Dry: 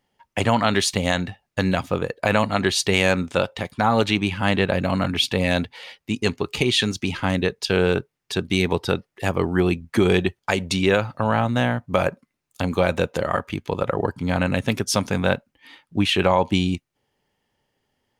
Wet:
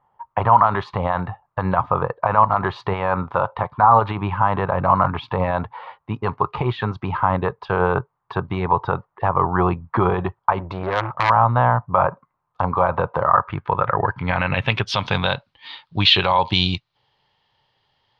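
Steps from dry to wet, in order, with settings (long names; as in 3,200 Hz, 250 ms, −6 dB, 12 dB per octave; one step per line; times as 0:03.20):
graphic EQ with 10 bands 125 Hz +8 dB, 250 Hz −9 dB, 1,000 Hz +11 dB, 4,000 Hz +8 dB, 8,000 Hz −7 dB
brickwall limiter −8 dBFS, peak gain reduction 9 dB
low-pass filter sweep 1,100 Hz → 4,100 Hz, 0:13.18–0:15.43
0:10.60–0:11.30: saturating transformer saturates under 1,500 Hz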